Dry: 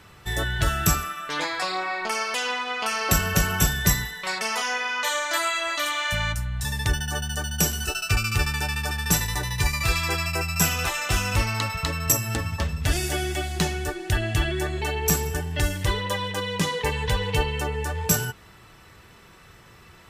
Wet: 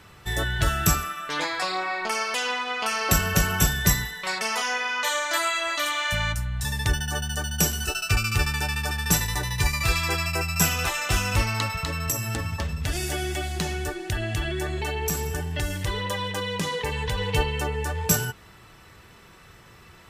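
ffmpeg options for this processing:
ffmpeg -i in.wav -filter_complex "[0:a]asettb=1/sr,asplit=3[link_01][link_02][link_03];[link_01]atrim=end=11.784[link_04];[link_02]atrim=start=11.78:end=17.18,asetpts=PTS-STARTPTS,afade=type=in:duration=0.004:curve=qsin,afade=type=out:start_time=5.396:duration=0.004:curve=qsin,acompressor=threshold=-24dB:ratio=2.5:attack=3.2:release=140:knee=1:detection=peak[link_05];[link_03]atrim=start=17.176[link_06];[link_04][link_05]acrossfade=duration=0.004:curve1=hsin:curve2=qsin[link_07];[link_07][link_06]acrossfade=duration=0.004:curve1=qsin:curve2=hsin" out.wav

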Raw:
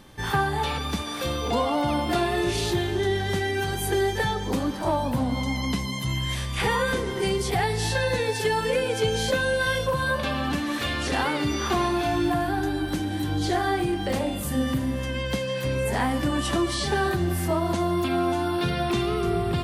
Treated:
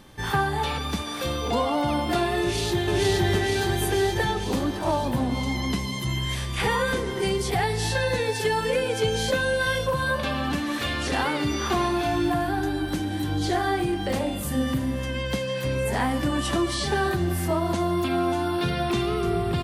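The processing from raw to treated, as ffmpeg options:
ffmpeg -i in.wav -filter_complex "[0:a]asplit=2[link_01][link_02];[link_02]afade=type=in:start_time=2.4:duration=0.01,afade=type=out:start_time=2.9:duration=0.01,aecho=0:1:470|940|1410|1880|2350|2820|3290|3760|4230|4700|5170|5640:0.944061|0.660843|0.46259|0.323813|0.226669|0.158668|0.111068|0.0777475|0.0544232|0.0380963|0.0266674|0.0186672[link_03];[link_01][link_03]amix=inputs=2:normalize=0" out.wav

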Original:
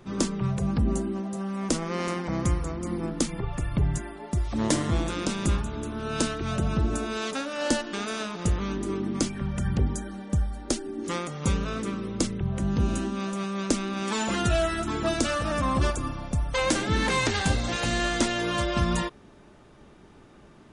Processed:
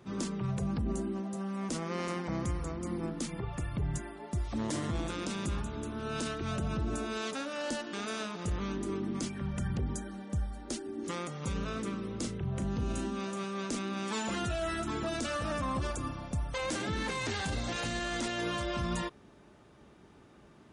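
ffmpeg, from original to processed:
ffmpeg -i in.wav -filter_complex "[0:a]asettb=1/sr,asplit=3[link_01][link_02][link_03];[link_01]atrim=end=12.074[link_04];[link_02]atrim=start=12.07:end=13.79,asetpts=PTS-STARTPTS,afade=type=in:duration=0.004:curve=qsin,afade=type=out:start_time=1.716:duration=0.004:curve=qsin,asplit=2[link_05][link_06];[link_06]adelay=38,volume=-9.5dB[link_07];[link_05][link_07]amix=inputs=2:normalize=0,atrim=end_sample=75852[link_08];[link_03]atrim=start=13.786[link_09];[link_04][link_08]acrossfade=duration=0.004:curve1=hsin:curve2=qsin[link_10];[link_10][link_09]acrossfade=duration=0.004:curve1=qsin:curve2=hsin,highpass=48,alimiter=limit=-20.5dB:level=0:latency=1:release=20,volume=-5dB" out.wav

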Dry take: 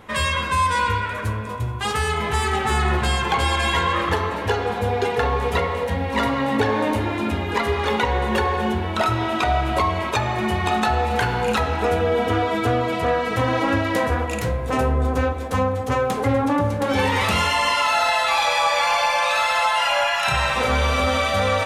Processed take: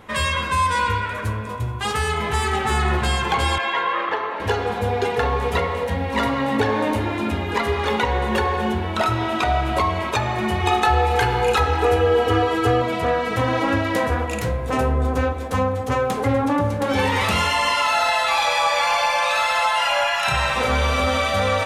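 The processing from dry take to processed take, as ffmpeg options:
ffmpeg -i in.wav -filter_complex "[0:a]asettb=1/sr,asplit=3[link_01][link_02][link_03];[link_01]atrim=end=3.584[link_04];[link_02]atrim=start=3.58:end=4.4,asetpts=PTS-STARTPTS,afade=type=in:duration=0.004:curve=qsin,afade=type=out:start_time=0.816:duration=0.004:curve=qsin,highpass=450,lowpass=2800[link_05];[link_03]atrim=start=4.396[link_06];[link_04][link_05]acrossfade=duration=0.004:curve1=hsin:curve2=qsin[link_07];[link_07][link_06]acrossfade=duration=0.004:curve1=qsin:curve2=hsin,asettb=1/sr,asplit=3[link_08][link_09][link_10];[link_08]atrim=end=10.604[link_11];[link_09]atrim=start=10.6:end=12.82,asetpts=PTS-STARTPTS,afade=type=in:duration=0.004:curve=qsin,afade=type=out:start_time=2.216:duration=0.004:curve=qsin,aecho=1:1:2.4:0.73,atrim=end_sample=97902[link_12];[link_10]atrim=start=12.816[link_13];[link_11][link_12]acrossfade=duration=0.004:curve1=hsin:curve2=qsin[link_14];[link_14][link_13]acrossfade=duration=0.004:curve1=qsin:curve2=hsin" out.wav

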